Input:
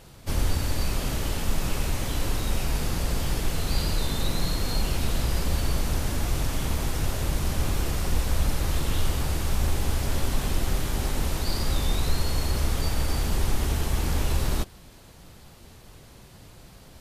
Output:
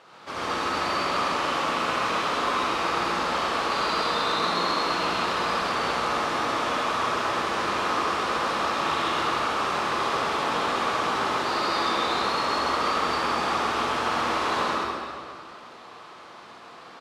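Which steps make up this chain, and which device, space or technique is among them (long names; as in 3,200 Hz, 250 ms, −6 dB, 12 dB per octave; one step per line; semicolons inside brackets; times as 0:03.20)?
station announcement (band-pass filter 420–3,900 Hz; parametric band 1,200 Hz +10.5 dB 0.5 octaves; loudspeakers that aren't time-aligned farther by 21 metres −11 dB, 45 metres −4 dB; convolution reverb RT60 2.2 s, pre-delay 64 ms, DRR −5.5 dB)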